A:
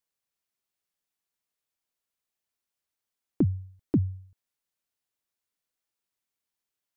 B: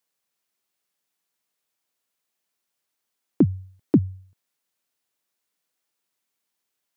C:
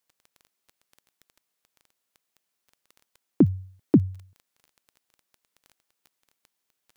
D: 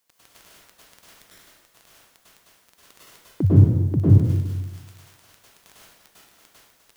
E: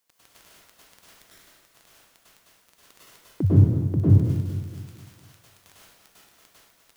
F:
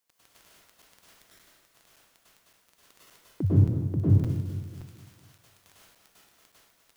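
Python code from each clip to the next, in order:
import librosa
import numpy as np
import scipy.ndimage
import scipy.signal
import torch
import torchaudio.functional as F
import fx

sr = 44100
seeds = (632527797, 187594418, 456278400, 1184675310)

y1 = fx.rider(x, sr, range_db=4, speed_s=0.5)
y1 = scipy.signal.sosfilt(scipy.signal.butter(2, 140.0, 'highpass', fs=sr, output='sos'), y1)
y1 = y1 * 10.0 ** (8.0 / 20.0)
y2 = fx.dmg_crackle(y1, sr, seeds[0], per_s=12.0, level_db=-38.0)
y3 = fx.over_compress(y2, sr, threshold_db=-19.0, ratio=-0.5)
y3 = fx.rev_plate(y3, sr, seeds[1], rt60_s=1.2, hf_ratio=0.75, predelay_ms=90, drr_db=-9.5)
y3 = y3 * 10.0 ** (3.0 / 20.0)
y4 = fx.echo_feedback(y3, sr, ms=228, feedback_pct=47, wet_db=-12.0)
y4 = y4 * 10.0 ** (-2.5 / 20.0)
y5 = fx.buffer_crackle(y4, sr, first_s=0.82, period_s=0.57, block=256, kind='zero')
y5 = y5 * 10.0 ** (-4.5 / 20.0)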